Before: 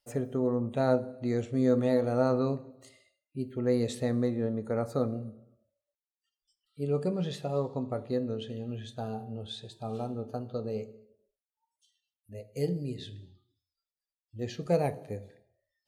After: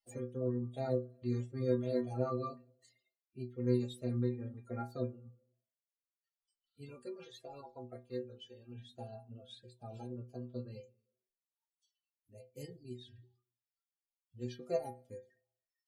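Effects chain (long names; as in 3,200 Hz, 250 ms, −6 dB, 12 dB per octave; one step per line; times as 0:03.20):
spectral magnitudes quantised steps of 30 dB
reverb reduction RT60 1 s
0:06.89–0:08.75: parametric band 160 Hz −10 dB 2.1 octaves
stiff-string resonator 120 Hz, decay 0.32 s, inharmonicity 0.008
level +1 dB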